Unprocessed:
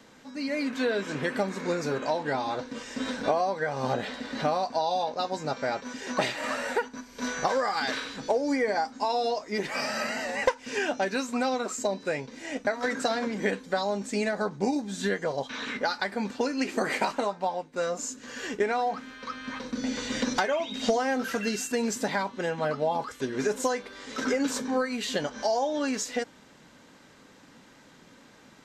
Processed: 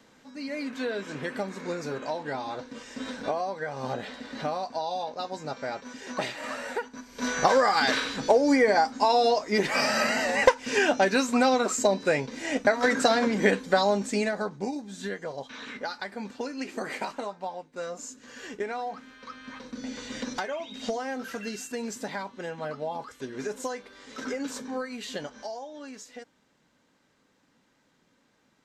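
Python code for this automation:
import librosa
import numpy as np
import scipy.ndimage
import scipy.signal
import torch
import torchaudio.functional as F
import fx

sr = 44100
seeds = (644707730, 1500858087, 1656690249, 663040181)

y = fx.gain(x, sr, db=fx.line((6.84, -4.0), (7.49, 5.5), (13.88, 5.5), (14.76, -6.0), (25.23, -6.0), (25.67, -13.5)))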